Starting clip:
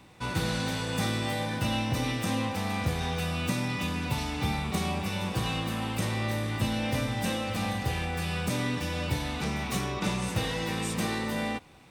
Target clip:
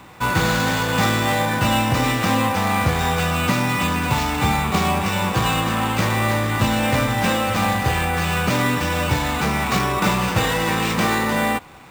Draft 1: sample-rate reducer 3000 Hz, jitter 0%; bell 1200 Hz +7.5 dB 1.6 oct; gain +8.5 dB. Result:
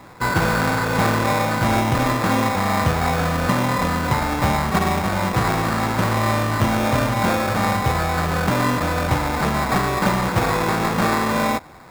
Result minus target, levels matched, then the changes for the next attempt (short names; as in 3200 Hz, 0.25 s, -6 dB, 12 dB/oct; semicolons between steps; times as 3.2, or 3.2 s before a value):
sample-rate reducer: distortion +5 dB
change: sample-rate reducer 11000 Hz, jitter 0%